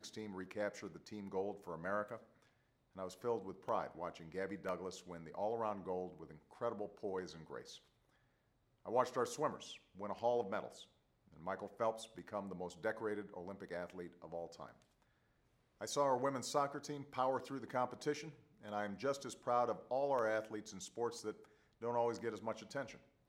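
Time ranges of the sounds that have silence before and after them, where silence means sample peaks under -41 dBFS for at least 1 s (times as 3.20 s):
8.88–14.66 s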